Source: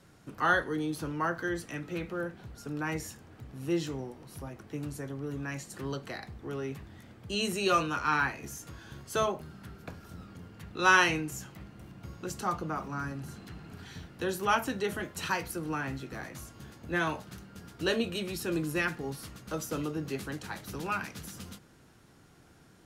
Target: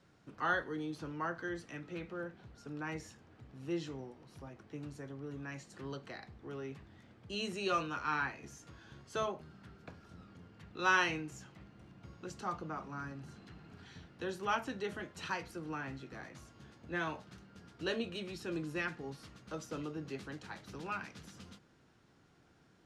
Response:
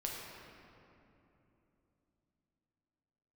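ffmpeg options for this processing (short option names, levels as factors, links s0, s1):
-af "lowpass=5900,lowshelf=f=76:g=-5.5,volume=0.447"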